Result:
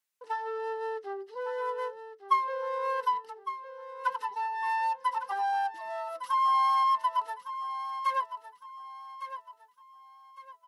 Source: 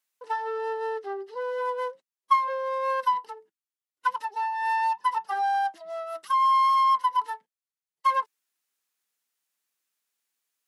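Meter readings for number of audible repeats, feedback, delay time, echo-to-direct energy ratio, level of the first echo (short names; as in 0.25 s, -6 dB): 3, 34%, 1.158 s, -10.5 dB, -11.0 dB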